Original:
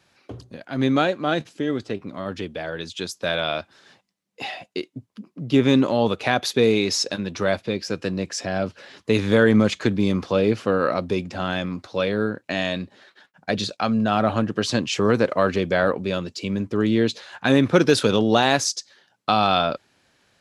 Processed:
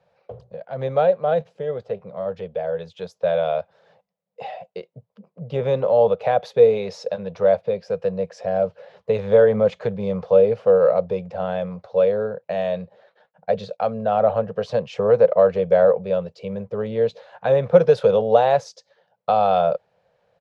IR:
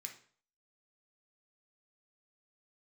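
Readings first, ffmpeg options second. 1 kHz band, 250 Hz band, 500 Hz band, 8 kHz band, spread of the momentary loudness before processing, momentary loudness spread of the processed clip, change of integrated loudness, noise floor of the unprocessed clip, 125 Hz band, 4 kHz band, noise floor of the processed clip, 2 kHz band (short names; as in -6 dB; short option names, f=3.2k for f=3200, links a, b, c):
+1.0 dB, -10.0 dB, +5.5 dB, under -15 dB, 14 LU, 15 LU, +1.5 dB, -67 dBFS, -4.0 dB, under -10 dB, -71 dBFS, -9.5 dB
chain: -af "firequalizer=gain_entry='entry(110,0);entry(170,6);entry(290,-21);entry(480,15);entry(1100,0);entry(1600,-4);entry(8300,-19)':delay=0.05:min_phase=1,volume=-5.5dB"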